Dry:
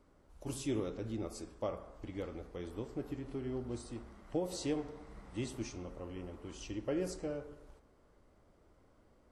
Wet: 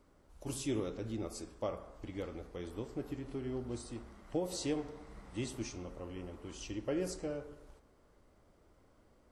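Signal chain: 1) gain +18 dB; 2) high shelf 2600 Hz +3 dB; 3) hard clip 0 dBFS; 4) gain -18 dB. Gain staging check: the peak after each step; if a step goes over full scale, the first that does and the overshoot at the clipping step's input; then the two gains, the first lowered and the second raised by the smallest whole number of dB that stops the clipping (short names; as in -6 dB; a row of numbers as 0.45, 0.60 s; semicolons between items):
-5.0, -5.0, -5.0, -23.0 dBFS; no overload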